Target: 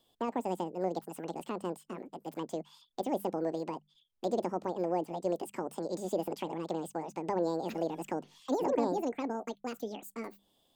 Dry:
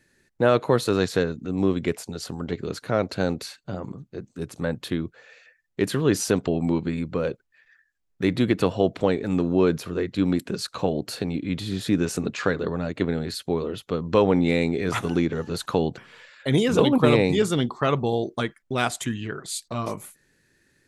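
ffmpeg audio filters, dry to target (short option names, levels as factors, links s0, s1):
-filter_complex "[0:a]asetrate=85554,aresample=44100,bandreject=f=50:t=h:w=6,bandreject=f=100:t=h:w=6,bandreject=f=150:t=h:w=6,bandreject=f=200:t=h:w=6,acrossover=split=690[s0][s1];[s1]acompressor=threshold=0.0112:ratio=6[s2];[s0][s2]amix=inputs=2:normalize=0,volume=0.422"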